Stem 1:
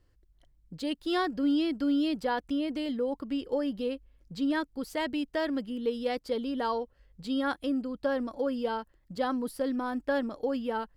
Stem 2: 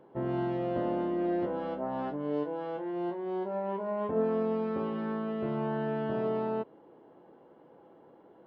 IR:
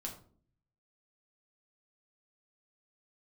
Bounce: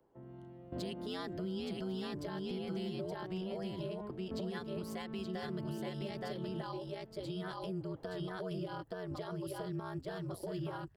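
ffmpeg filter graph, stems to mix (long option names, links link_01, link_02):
-filter_complex "[0:a]aeval=exprs='val(0)*sin(2*PI*92*n/s)':channel_layout=same,agate=range=-33dB:threshold=-59dB:ratio=3:detection=peak,volume=-1.5dB,asplit=3[link_01][link_02][link_03];[link_02]volume=-3.5dB[link_04];[1:a]acrossover=split=250[link_05][link_06];[link_06]acompressor=threshold=-44dB:ratio=3[link_07];[link_05][link_07]amix=inputs=2:normalize=0,volume=-3.5dB,asplit=2[link_08][link_09];[link_09]volume=-15.5dB[link_10];[link_03]apad=whole_len=373123[link_11];[link_08][link_11]sidechaingate=range=-12dB:threshold=-55dB:ratio=16:detection=peak[link_12];[link_04][link_10]amix=inputs=2:normalize=0,aecho=0:1:872:1[link_13];[link_01][link_12][link_13]amix=inputs=3:normalize=0,acrossover=split=170|3000[link_14][link_15][link_16];[link_15]acompressor=threshold=-36dB:ratio=6[link_17];[link_14][link_17][link_16]amix=inputs=3:normalize=0,alimiter=level_in=7dB:limit=-24dB:level=0:latency=1:release=188,volume=-7dB"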